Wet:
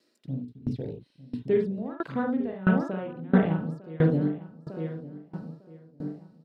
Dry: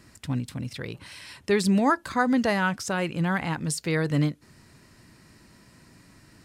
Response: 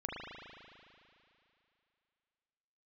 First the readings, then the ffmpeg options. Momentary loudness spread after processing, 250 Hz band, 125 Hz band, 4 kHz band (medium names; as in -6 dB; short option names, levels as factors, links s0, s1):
17 LU, -0.5 dB, 0.0 dB, under -15 dB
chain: -filter_complex "[0:a]acrossover=split=270|2600[s0][s1][s2];[s0]aeval=exprs='val(0)*gte(abs(val(0)),0.00944)':c=same[s3];[s3][s1][s2]amix=inputs=3:normalize=0,afwtdn=0.0251,equalizer=f=125:t=o:w=1:g=5,equalizer=f=250:t=o:w=1:g=4,equalizer=f=500:t=o:w=1:g=7,equalizer=f=1000:t=o:w=1:g=-6,equalizer=f=2000:t=o:w=1:g=-5,equalizer=f=4000:t=o:w=1:g=10,equalizer=f=8000:t=o:w=1:g=-5,asplit=2[s4][s5];[s5]acompressor=threshold=0.0282:ratio=6,volume=0.794[s6];[s4][s6]amix=inputs=2:normalize=0,asplit=2[s7][s8];[s8]adelay=902,lowpass=f=1700:p=1,volume=0.398,asplit=2[s9][s10];[s10]adelay=902,lowpass=f=1700:p=1,volume=0.45,asplit=2[s11][s12];[s12]adelay=902,lowpass=f=1700:p=1,volume=0.45,asplit=2[s13][s14];[s14]adelay=902,lowpass=f=1700:p=1,volume=0.45,asplit=2[s15][s16];[s16]adelay=902,lowpass=f=1700:p=1,volume=0.45[s17];[s7][s9][s11][s13][s15][s17]amix=inputs=6:normalize=0,acrossover=split=2500[s18][s19];[s19]acompressor=threshold=0.00316:ratio=4:attack=1:release=60[s20];[s18][s20]amix=inputs=2:normalize=0[s21];[1:a]atrim=start_sample=2205,atrim=end_sample=3528[s22];[s21][s22]afir=irnorm=-1:irlink=0,aeval=exprs='val(0)*pow(10,-24*if(lt(mod(1.5*n/s,1),2*abs(1.5)/1000),1-mod(1.5*n/s,1)/(2*abs(1.5)/1000),(mod(1.5*n/s,1)-2*abs(1.5)/1000)/(1-2*abs(1.5)/1000))/20)':c=same,volume=1.12"